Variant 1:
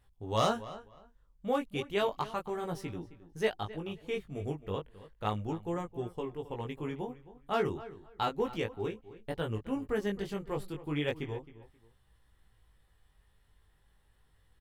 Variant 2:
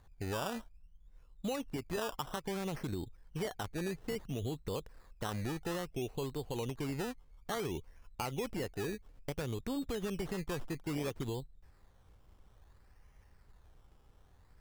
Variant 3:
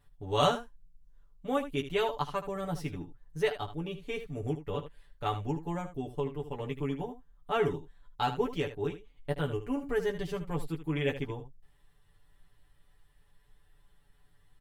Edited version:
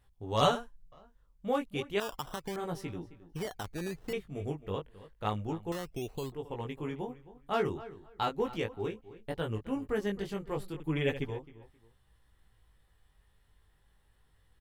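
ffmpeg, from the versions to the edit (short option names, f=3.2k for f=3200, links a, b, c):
-filter_complex "[2:a]asplit=2[a][b];[1:a]asplit=3[c][d][e];[0:a]asplit=6[f][g][h][i][j][k];[f]atrim=end=0.412[l];[a]atrim=start=0.408:end=0.922[m];[g]atrim=start=0.918:end=2.002[n];[c]atrim=start=1.998:end=2.562[o];[h]atrim=start=2.558:end=3.332[p];[d]atrim=start=3.328:end=4.132[q];[i]atrim=start=4.128:end=5.722[r];[e]atrim=start=5.718:end=6.322[s];[j]atrim=start=6.318:end=10.802[t];[b]atrim=start=10.798:end=11.302[u];[k]atrim=start=11.298[v];[l][m]acrossfade=d=0.004:c1=hsin:c2=hsin[w];[w][n]acrossfade=d=0.004:c1=hsin:c2=hsin[x];[x][o]acrossfade=d=0.004:c1=hsin:c2=hsin[y];[y][p]acrossfade=d=0.004:c1=hsin:c2=hsin[z];[z][q]acrossfade=d=0.004:c1=hsin:c2=hsin[aa];[aa][r]acrossfade=d=0.004:c1=hsin:c2=hsin[ab];[ab][s]acrossfade=d=0.004:c1=hsin:c2=hsin[ac];[ac][t]acrossfade=d=0.004:c1=hsin:c2=hsin[ad];[ad][u]acrossfade=d=0.004:c1=hsin:c2=hsin[ae];[ae][v]acrossfade=d=0.004:c1=hsin:c2=hsin"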